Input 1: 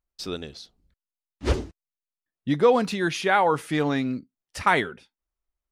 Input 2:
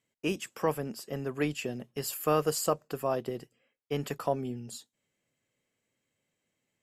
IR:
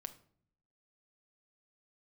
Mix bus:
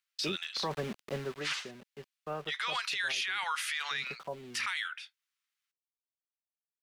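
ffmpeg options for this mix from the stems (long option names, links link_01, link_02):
-filter_complex "[0:a]highpass=frequency=1300:width=0.5412,highpass=frequency=1300:width=1.3066,volume=1.5dB[link_01];[1:a]lowpass=1600,aecho=1:1:5.2:0.43,aeval=exprs='val(0)*gte(abs(val(0)),0.00794)':channel_layout=same,volume=-1dB,afade=type=out:start_time=1.09:duration=0.37:silence=0.237137[link_02];[link_01][link_02]amix=inputs=2:normalize=0,equalizer=frequency=2900:width=0.49:gain=9.5,acrossover=split=350|3000[link_03][link_04][link_05];[link_04]acompressor=threshold=-23dB:ratio=6[link_06];[link_03][link_06][link_05]amix=inputs=3:normalize=0,alimiter=level_in=0.5dB:limit=-24dB:level=0:latency=1:release=37,volume=-0.5dB"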